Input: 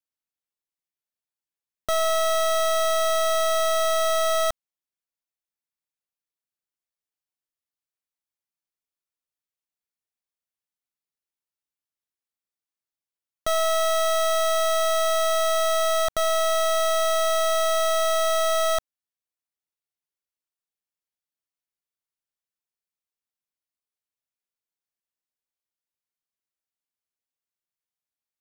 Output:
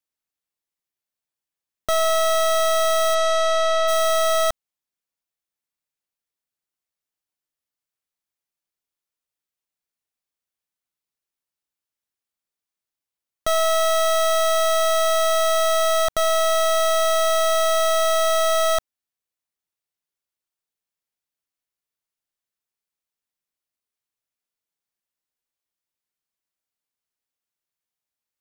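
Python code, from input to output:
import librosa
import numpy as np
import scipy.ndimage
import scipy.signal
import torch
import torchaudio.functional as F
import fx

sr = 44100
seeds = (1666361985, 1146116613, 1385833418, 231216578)

y = fx.lowpass(x, sr, hz=fx.line((3.14, 7500.0), (3.87, 4600.0)), slope=12, at=(3.14, 3.87), fade=0.02)
y = y * librosa.db_to_amplitude(3.0)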